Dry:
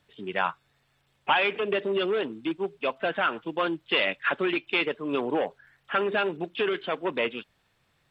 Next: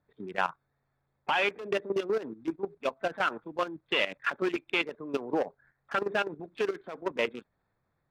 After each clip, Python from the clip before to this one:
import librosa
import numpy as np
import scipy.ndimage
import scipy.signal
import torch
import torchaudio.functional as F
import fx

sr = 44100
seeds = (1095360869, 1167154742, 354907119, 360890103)

y = fx.wiener(x, sr, points=15)
y = fx.level_steps(y, sr, step_db=13)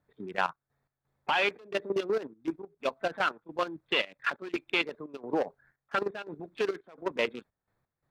y = fx.dynamic_eq(x, sr, hz=4200.0, q=3.3, threshold_db=-54.0, ratio=4.0, max_db=6)
y = fx.step_gate(y, sr, bpm=86, pattern='xxx.x.xxx.', floor_db=-12.0, edge_ms=4.5)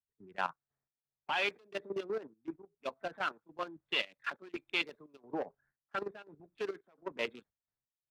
y = fx.notch(x, sr, hz=500.0, q=14.0)
y = fx.band_widen(y, sr, depth_pct=70)
y = y * librosa.db_to_amplitude(-8.0)